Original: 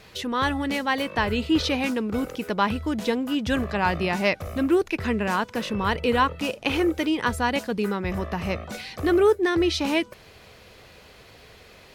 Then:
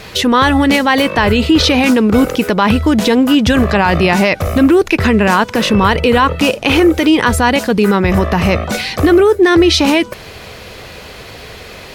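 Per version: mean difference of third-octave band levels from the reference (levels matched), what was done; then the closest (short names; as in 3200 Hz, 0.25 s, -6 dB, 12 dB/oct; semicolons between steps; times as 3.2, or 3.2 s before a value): 2.5 dB: maximiser +18 dB; gain -1 dB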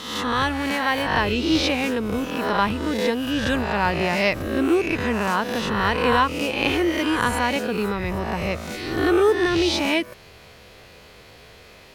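4.5 dB: spectral swells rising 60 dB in 0.95 s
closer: first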